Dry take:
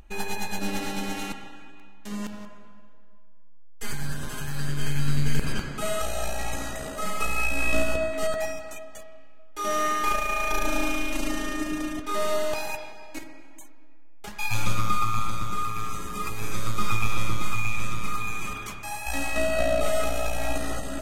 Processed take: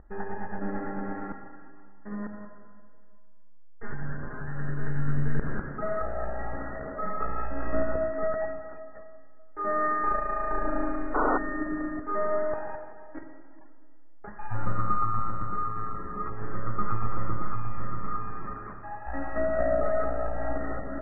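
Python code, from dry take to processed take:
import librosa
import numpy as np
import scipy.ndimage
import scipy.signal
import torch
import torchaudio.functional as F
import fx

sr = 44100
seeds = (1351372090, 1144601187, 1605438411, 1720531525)

y = scipy.signal.sosfilt(scipy.signal.cheby1(6, 3, 1900.0, 'lowpass', fs=sr, output='sos'), x)
y = fx.spec_paint(y, sr, seeds[0], shape='noise', start_s=11.14, length_s=0.24, low_hz=260.0, high_hz=1500.0, level_db=-25.0)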